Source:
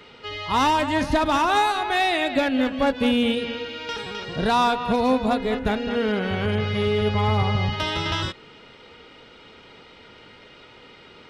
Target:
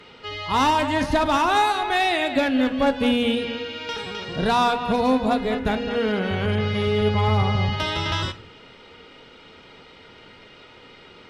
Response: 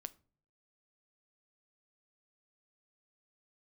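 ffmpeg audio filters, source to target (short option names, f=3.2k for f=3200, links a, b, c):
-filter_complex "[1:a]atrim=start_sample=2205,atrim=end_sample=6174,asetrate=27342,aresample=44100[a];[0:a][a]afir=irnorm=-1:irlink=0,volume=2.5dB"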